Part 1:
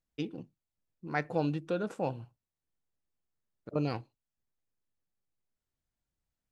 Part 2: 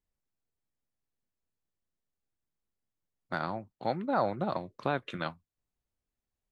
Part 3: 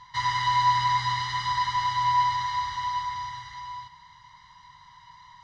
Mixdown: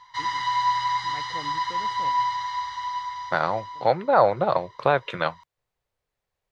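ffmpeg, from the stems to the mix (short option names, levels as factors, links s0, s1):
-filter_complex "[0:a]volume=0.282[s0];[1:a]equalizer=f=125:t=o:w=1:g=7,equalizer=f=250:t=o:w=1:g=-7,equalizer=f=500:t=o:w=1:g=11,equalizer=f=1000:t=o:w=1:g=7,equalizer=f=2000:t=o:w=1:g=7,equalizer=f=4000:t=o:w=1:g=5,volume=1.19,asplit=2[s1][s2];[2:a]lowshelf=f=370:t=q:w=1.5:g=-10,volume=0.794[s3];[s2]apad=whole_len=287395[s4];[s0][s4]sidechaincompress=threshold=0.0158:ratio=8:attack=16:release=971[s5];[s5][s1][s3]amix=inputs=3:normalize=0"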